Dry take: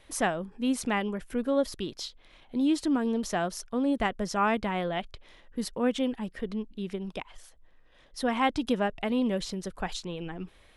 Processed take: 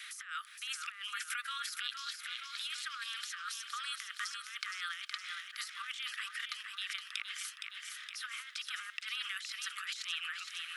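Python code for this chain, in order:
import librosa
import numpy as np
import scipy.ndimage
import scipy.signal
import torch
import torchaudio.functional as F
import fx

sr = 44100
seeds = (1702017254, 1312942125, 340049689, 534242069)

p1 = scipy.signal.sosfilt(scipy.signal.cheby1(8, 1.0, 1200.0, 'highpass', fs=sr, output='sos'), x)
p2 = fx.over_compress(p1, sr, threshold_db=-48.0, ratio=-1.0)
p3 = p2 + fx.echo_feedback(p2, sr, ms=466, feedback_pct=59, wet_db=-7.0, dry=0)
p4 = fx.band_squash(p3, sr, depth_pct=40)
y = p4 * librosa.db_to_amplitude(4.5)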